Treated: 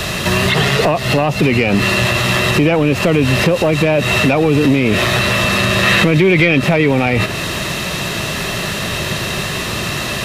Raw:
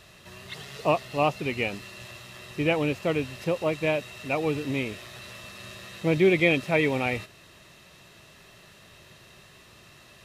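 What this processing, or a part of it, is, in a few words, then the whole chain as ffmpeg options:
mastering chain: -filter_complex "[0:a]equalizer=f=200:t=o:w=1:g=3,acrossover=split=160|3200[a][b][c];[a]acompressor=threshold=-40dB:ratio=4[d];[b]acompressor=threshold=-30dB:ratio=4[e];[c]acompressor=threshold=-54dB:ratio=4[f];[d][e][f]amix=inputs=3:normalize=0,acompressor=threshold=-35dB:ratio=2.5,asoftclip=type=tanh:threshold=-28dB,alimiter=level_in=35.5dB:limit=-1dB:release=50:level=0:latency=1,asettb=1/sr,asplit=3[g][h][i];[g]atrim=end=5.834[j];[h]atrim=start=5.83:end=6.59,asetpts=PTS-STARTPTS,afade=t=in:d=0.004:c=qsin,afade=t=out:st=0.756:d=0.004:c=qsin,equalizer=f=2k:t=o:w=1.7:g=5[k];[i]atrim=start=6.586[l];[j][k]acrossfade=d=0.004:c1=hsin:c2=qsin[m];[m][l]acrossfade=d=0.004:c1=qsin:c2=hsin,volume=-4dB"

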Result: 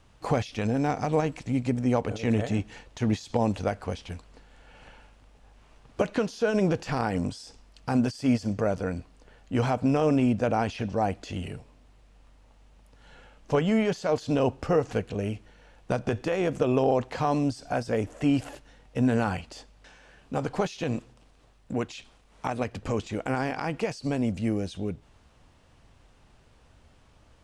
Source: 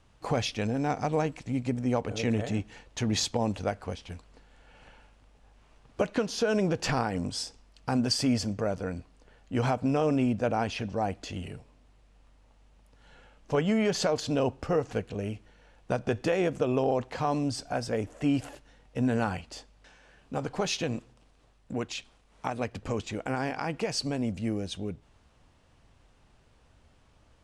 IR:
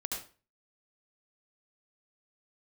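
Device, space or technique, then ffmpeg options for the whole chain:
de-esser from a sidechain: -filter_complex "[0:a]asplit=2[a][b];[b]highpass=4.6k,apad=whole_len=1209811[c];[a][c]sidechaincompress=threshold=-47dB:ratio=8:attack=2.4:release=39,volume=3.5dB"

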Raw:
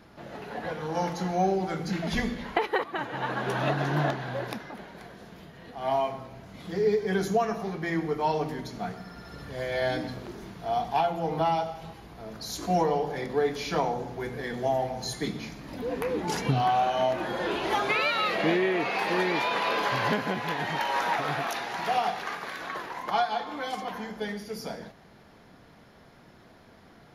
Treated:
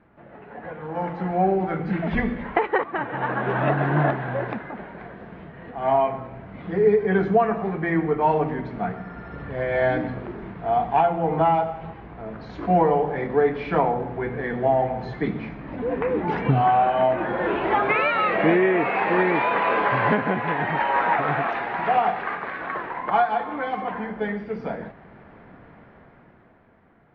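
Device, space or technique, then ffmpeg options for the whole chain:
action camera in a waterproof case: -af "lowpass=f=2.3k:w=0.5412,lowpass=f=2.3k:w=1.3066,dynaudnorm=f=110:g=21:m=11.5dB,volume=-4dB" -ar 48000 -c:a aac -b:a 64k

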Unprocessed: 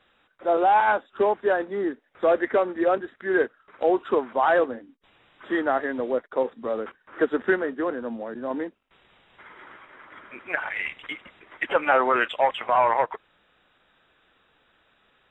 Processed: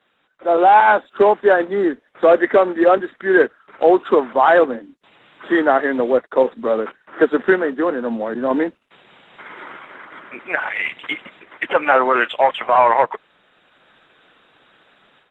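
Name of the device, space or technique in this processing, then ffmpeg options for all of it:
video call: -af "highpass=f=130:w=0.5412,highpass=f=130:w=1.3066,dynaudnorm=f=330:g=3:m=11.5dB" -ar 48000 -c:a libopus -b:a 16k

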